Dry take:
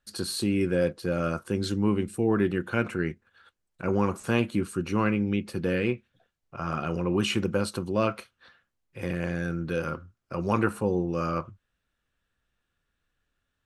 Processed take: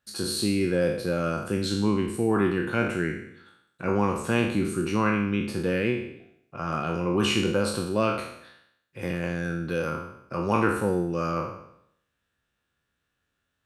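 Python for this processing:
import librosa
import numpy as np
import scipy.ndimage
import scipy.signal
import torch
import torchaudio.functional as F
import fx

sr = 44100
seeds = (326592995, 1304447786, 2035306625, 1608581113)

y = fx.spec_trails(x, sr, decay_s=0.73)
y = scipy.signal.sosfilt(scipy.signal.butter(2, 69.0, 'highpass', fs=sr, output='sos'), y)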